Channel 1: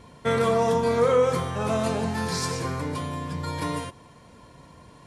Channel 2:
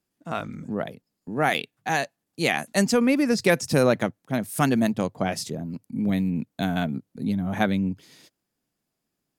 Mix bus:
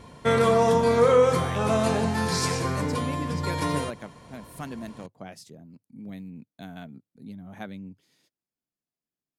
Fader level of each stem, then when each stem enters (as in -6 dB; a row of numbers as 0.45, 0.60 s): +2.0, -15.5 dB; 0.00, 0.00 s